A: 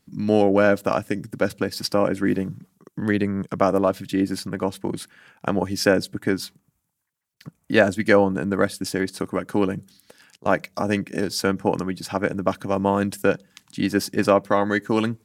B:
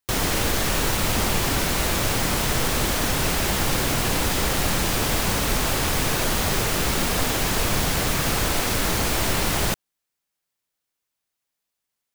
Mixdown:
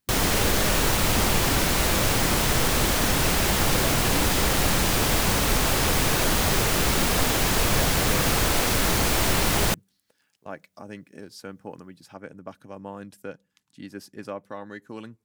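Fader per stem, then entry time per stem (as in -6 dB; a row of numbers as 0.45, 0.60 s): -17.5, +0.5 dB; 0.00, 0.00 s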